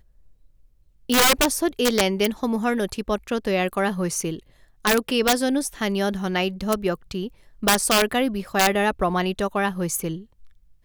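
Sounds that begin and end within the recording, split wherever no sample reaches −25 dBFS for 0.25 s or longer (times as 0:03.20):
0:01.10–0:04.34
0:04.85–0:07.27
0:07.63–0:10.15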